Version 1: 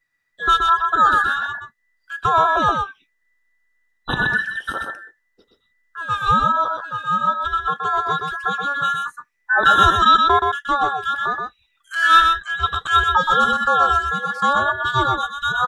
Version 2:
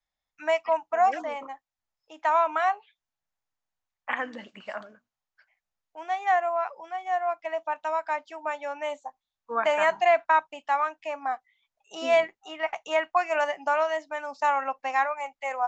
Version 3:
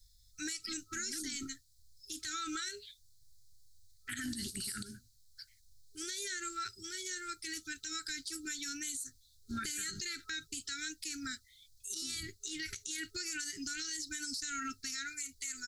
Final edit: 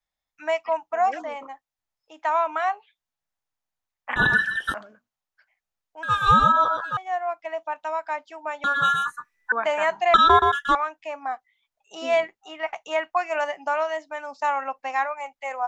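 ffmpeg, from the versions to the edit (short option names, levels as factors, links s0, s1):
-filter_complex "[0:a]asplit=4[s0][s1][s2][s3];[1:a]asplit=5[s4][s5][s6][s7][s8];[s4]atrim=end=4.162[s9];[s0]atrim=start=4.158:end=4.742[s10];[s5]atrim=start=4.738:end=6.032[s11];[s1]atrim=start=6.028:end=6.972[s12];[s6]atrim=start=6.968:end=8.642[s13];[s2]atrim=start=8.638:end=9.522[s14];[s7]atrim=start=9.518:end=10.142[s15];[s3]atrim=start=10.138:end=10.752[s16];[s8]atrim=start=10.748[s17];[s9][s10]acrossfade=d=0.004:c1=hsin:c2=hsin[s18];[s18][s11]acrossfade=d=0.004:c1=hsin:c2=hsin[s19];[s19][s12]acrossfade=d=0.004:c1=hsin:c2=hsin[s20];[s20][s13]acrossfade=d=0.004:c1=hsin:c2=hsin[s21];[s21][s14]acrossfade=d=0.004:c1=hsin:c2=hsin[s22];[s22][s15]acrossfade=d=0.004:c1=hsin:c2=hsin[s23];[s23][s16]acrossfade=d=0.004:c1=hsin:c2=hsin[s24];[s24][s17]acrossfade=d=0.004:c1=hsin:c2=hsin"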